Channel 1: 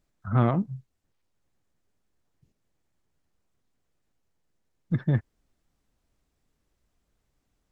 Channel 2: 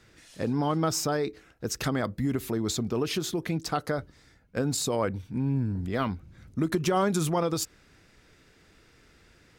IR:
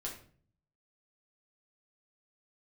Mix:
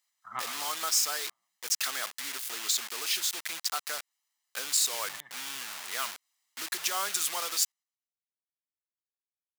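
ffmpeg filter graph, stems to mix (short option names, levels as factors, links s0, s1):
-filter_complex "[0:a]aecho=1:1:1:0.62,volume=0.668,asplit=2[s0][s1];[s1]volume=0.2[s2];[1:a]acontrast=34,acrusher=bits=4:mix=0:aa=0.000001,volume=0.355,asplit=2[s3][s4];[s4]apad=whole_len=340444[s5];[s0][s5]sidechaincompress=threshold=0.00794:ratio=3:attack=5.4:release=166[s6];[s2]aecho=0:1:118|236|354|472|590|708|826|944:1|0.54|0.292|0.157|0.085|0.0459|0.0248|0.0134[s7];[s6][s3][s7]amix=inputs=3:normalize=0,highpass=1100,highshelf=f=2100:g=9.5"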